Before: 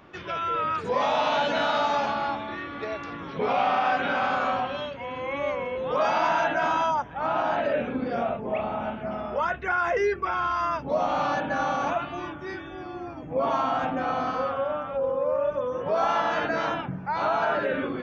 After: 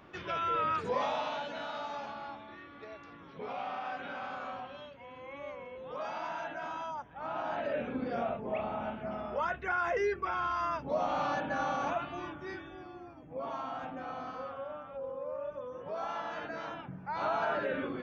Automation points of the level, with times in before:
0:00.79 −4 dB
0:01.49 −15 dB
0:06.86 −15 dB
0:07.98 −6.5 dB
0:12.53 −6.5 dB
0:13.14 −13.5 dB
0:16.74 −13.5 dB
0:17.26 −7 dB

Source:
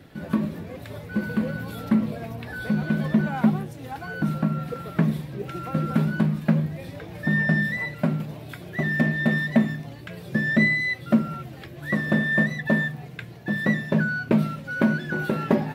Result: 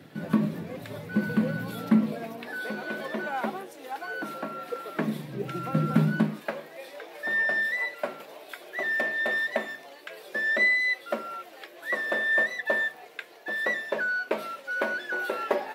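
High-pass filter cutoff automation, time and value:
high-pass filter 24 dB per octave
0:01.63 120 Hz
0:02.85 350 Hz
0:04.86 350 Hz
0:05.43 120 Hz
0:06.09 120 Hz
0:06.49 430 Hz

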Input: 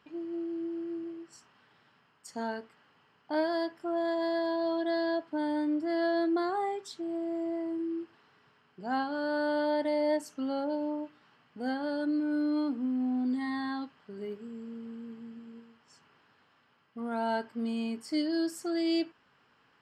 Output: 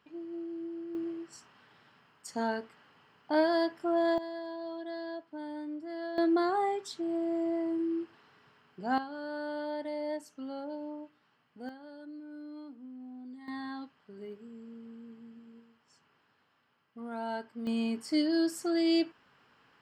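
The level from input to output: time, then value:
−4 dB
from 0:00.95 +3 dB
from 0:04.18 −9.5 dB
from 0:06.18 +2 dB
from 0:08.98 −7.5 dB
from 0:11.69 −16 dB
from 0:13.48 −5.5 dB
from 0:17.67 +2 dB

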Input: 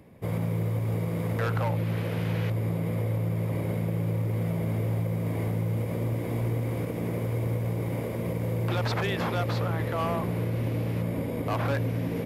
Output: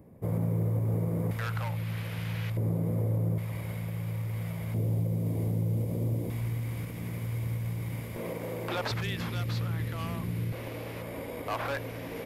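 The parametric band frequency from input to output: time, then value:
parametric band −14.5 dB 2.4 octaves
3,200 Hz
from 0:01.31 380 Hz
from 0:02.57 2,700 Hz
from 0:03.38 350 Hz
from 0:04.74 1,600 Hz
from 0:06.30 470 Hz
from 0:08.16 86 Hz
from 0:08.91 650 Hz
from 0:10.52 150 Hz

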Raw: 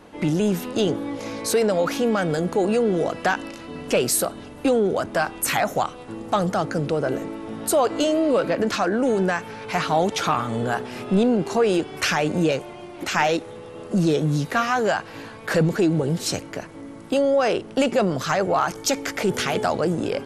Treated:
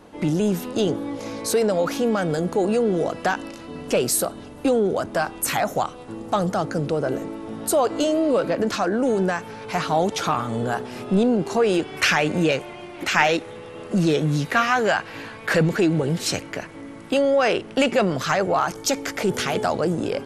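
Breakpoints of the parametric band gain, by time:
parametric band 2,200 Hz 1.4 octaves
0:11.38 −3 dB
0:12.01 +5.5 dB
0:18.11 +5.5 dB
0:18.64 −1 dB

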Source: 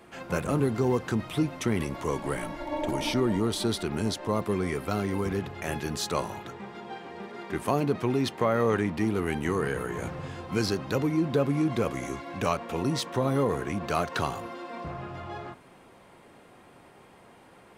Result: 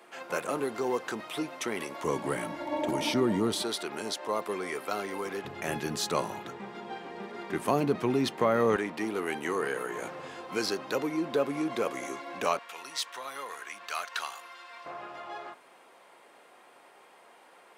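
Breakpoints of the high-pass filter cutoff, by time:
440 Hz
from 0:02.04 160 Hz
from 0:03.62 460 Hz
from 0:05.45 160 Hz
from 0:08.76 370 Hz
from 0:12.59 1,400 Hz
from 0:14.86 520 Hz

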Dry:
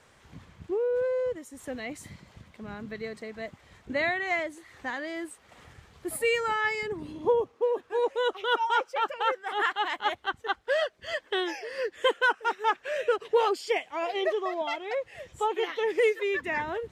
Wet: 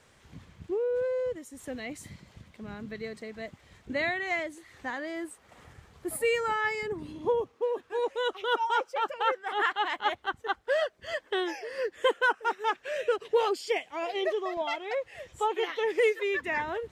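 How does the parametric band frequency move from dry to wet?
parametric band −3.5 dB 2 octaves
1,000 Hz
from 0:04.86 3,400 Hz
from 0:06.98 620 Hz
from 0:08.42 2,200 Hz
from 0:09.21 12,000 Hz
from 0:10.22 3,400 Hz
from 0:12.61 1,100 Hz
from 0:14.57 160 Hz

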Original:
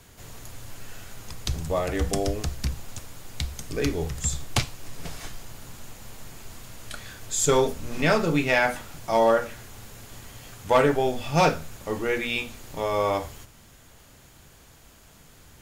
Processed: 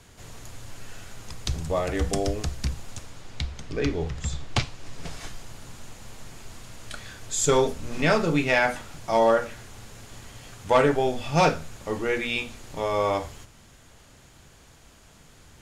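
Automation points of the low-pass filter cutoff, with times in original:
0:02.89 10,000 Hz
0:03.52 4,400 Hz
0:04.37 4,400 Hz
0:05.26 9,700 Hz

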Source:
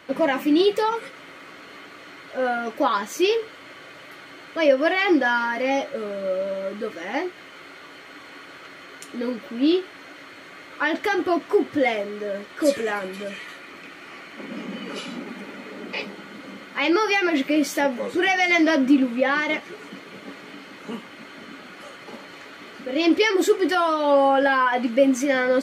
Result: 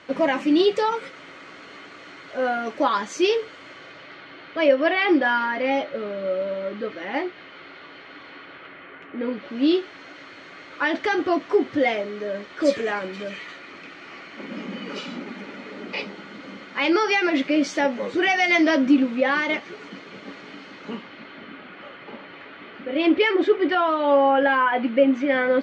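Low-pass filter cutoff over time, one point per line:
low-pass filter 24 dB per octave
0:03.65 7,300 Hz
0:04.25 4,400 Hz
0:08.27 4,400 Hz
0:09.11 2,400 Hz
0:09.61 6,200 Hz
0:20.69 6,200 Hz
0:21.56 3,400 Hz

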